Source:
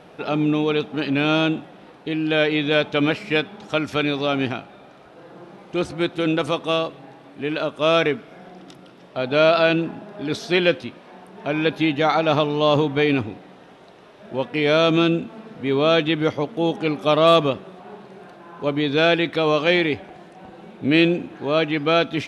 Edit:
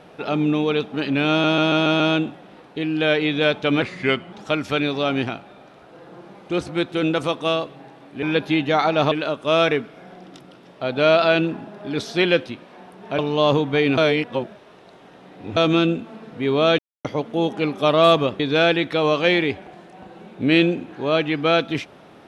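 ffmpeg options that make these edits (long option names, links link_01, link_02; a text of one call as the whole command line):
ffmpeg -i in.wav -filter_complex "[0:a]asplit=16[link_01][link_02][link_03][link_04][link_05][link_06][link_07][link_08][link_09][link_10][link_11][link_12][link_13][link_14][link_15][link_16];[link_01]atrim=end=1.442[link_17];[link_02]atrim=start=1.298:end=1.442[link_18];[link_03]atrim=start=1.298:end=1.442[link_19];[link_04]atrim=start=1.298:end=1.442[link_20];[link_05]atrim=start=1.298:end=1.442[link_21];[link_06]atrim=start=1.298:end=3.124[link_22];[link_07]atrim=start=3.12:end=3.56,asetpts=PTS-STARTPTS,asetrate=38367,aresample=44100,atrim=end_sample=22303,asetpts=PTS-STARTPTS[link_23];[link_08]atrim=start=3.556:end=7.462[link_24];[link_09]atrim=start=11.528:end=12.422[link_25];[link_10]atrim=start=7.458:end=11.532[link_26];[link_11]atrim=start=12.418:end=13.212[link_27];[link_12]atrim=start=13.208:end=14.802,asetpts=PTS-STARTPTS,areverse[link_28];[link_13]atrim=start=14.798:end=16.02,asetpts=PTS-STARTPTS,afade=type=out:start_time=1.218:duration=0.004:curve=hsin[link_29];[link_14]atrim=start=16.02:end=16.28,asetpts=PTS-STARTPTS,volume=0[link_30];[link_15]atrim=start=16.28:end=17.632,asetpts=PTS-STARTPTS,afade=type=in:duration=0.004:curve=hsin[link_31];[link_16]atrim=start=18.818[link_32];[link_17][link_18]acrossfade=duration=0.004:curve1=hsin:curve2=hsin[link_33];[link_33][link_19]acrossfade=duration=0.004:curve1=hsin:curve2=hsin[link_34];[link_34][link_20]acrossfade=duration=0.004:curve1=hsin:curve2=hsin[link_35];[link_35][link_21]acrossfade=duration=0.004:curve1=hsin:curve2=hsin[link_36];[link_36][link_22]acrossfade=duration=0.004:curve1=hsin:curve2=hsin[link_37];[link_37][link_23]acrossfade=duration=0.004:curve1=hsin:curve2=hsin[link_38];[link_38][link_24]acrossfade=duration=0.004:curve1=hsin:curve2=hsin[link_39];[link_39][link_25]acrossfade=duration=0.004:curve1=hsin:curve2=hsin[link_40];[link_40][link_26]acrossfade=duration=0.004:curve1=hsin:curve2=hsin[link_41];[link_41][link_27]acrossfade=duration=0.004:curve1=hsin:curve2=hsin[link_42];[link_42][link_28]acrossfade=duration=0.004:curve1=hsin:curve2=hsin[link_43];[link_29][link_30][link_31]concat=n=3:v=0:a=1[link_44];[link_43][link_44]acrossfade=duration=0.004:curve1=hsin:curve2=hsin[link_45];[link_45][link_32]acrossfade=duration=0.004:curve1=hsin:curve2=hsin" out.wav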